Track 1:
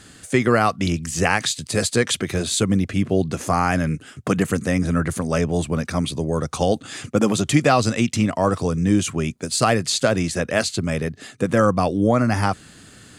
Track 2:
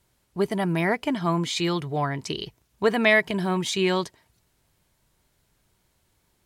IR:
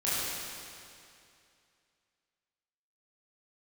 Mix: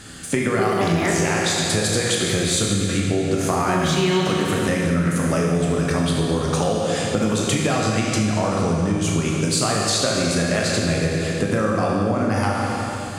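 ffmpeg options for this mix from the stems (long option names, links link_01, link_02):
-filter_complex "[0:a]acompressor=threshold=-19dB:ratio=6,volume=0.5dB,asplit=2[link_01][link_02];[link_02]volume=-3dB[link_03];[1:a]acrusher=bits=9:mix=0:aa=0.000001,adelay=200,volume=2.5dB,asplit=3[link_04][link_05][link_06];[link_04]atrim=end=1.11,asetpts=PTS-STARTPTS,afade=type=out:start_time=1.106:duration=0.004:curve=hsin[link_07];[link_05]atrim=start=1.11:end=3.68,asetpts=PTS-STARTPTS,volume=0[link_08];[link_06]atrim=start=3.68,asetpts=PTS-STARTPTS,afade=type=in:duration=0.004:curve=hsin[link_09];[link_07][link_08][link_09]concat=n=3:v=0:a=1,asplit=2[link_10][link_11];[link_11]volume=-3.5dB[link_12];[2:a]atrim=start_sample=2205[link_13];[link_03][link_12]amix=inputs=2:normalize=0[link_14];[link_14][link_13]afir=irnorm=-1:irlink=0[link_15];[link_01][link_10][link_15]amix=inputs=3:normalize=0,acompressor=threshold=-18dB:ratio=3"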